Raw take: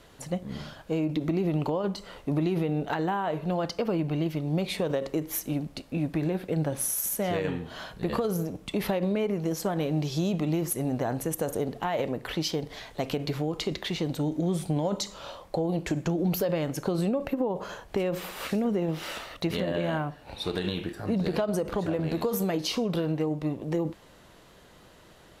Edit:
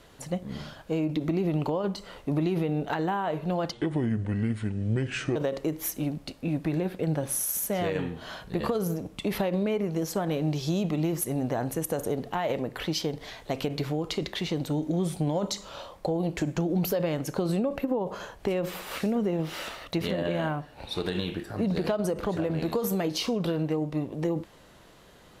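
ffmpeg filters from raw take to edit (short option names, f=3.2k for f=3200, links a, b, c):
-filter_complex "[0:a]asplit=3[a][b][c];[a]atrim=end=3.724[d];[b]atrim=start=3.72:end=4.85,asetpts=PTS-STARTPTS,asetrate=30429,aresample=44100[e];[c]atrim=start=4.846[f];[d][e]acrossfade=d=0.004:c1=hsin:c2=hsin[g];[g][f]acrossfade=d=0.004:c1=hsin:c2=hsin"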